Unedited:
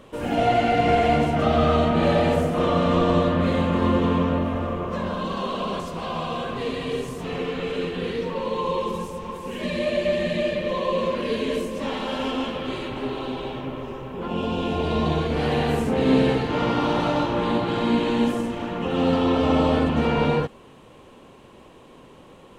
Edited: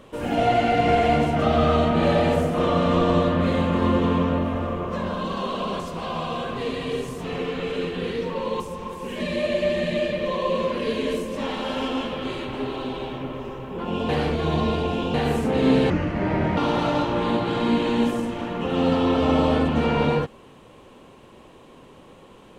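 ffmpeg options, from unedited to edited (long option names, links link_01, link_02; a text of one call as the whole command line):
ffmpeg -i in.wav -filter_complex "[0:a]asplit=6[link_01][link_02][link_03][link_04][link_05][link_06];[link_01]atrim=end=8.602[link_07];[link_02]atrim=start=9.028:end=14.522[link_08];[link_03]atrim=start=14.518:end=15.572,asetpts=PTS-STARTPTS,areverse[link_09];[link_04]atrim=start=15.568:end=16.334[link_10];[link_05]atrim=start=16.33:end=16.78,asetpts=PTS-STARTPTS,asetrate=29547,aresample=44100,atrim=end_sample=29619,asetpts=PTS-STARTPTS[link_11];[link_06]atrim=start=16.776[link_12];[link_07][link_08]acrossfade=duration=0.004:curve1=hsin:curve2=hsin[link_13];[link_13][link_09]acrossfade=duration=0.004:curve1=hsin:curve2=hsin[link_14];[link_14][link_10]acrossfade=duration=0.004:curve1=hsin:curve2=hsin[link_15];[link_15][link_11]acrossfade=duration=0.004:curve1=hsin:curve2=hsin[link_16];[link_16][link_12]acrossfade=duration=0.004:curve1=hsin:curve2=hsin" out.wav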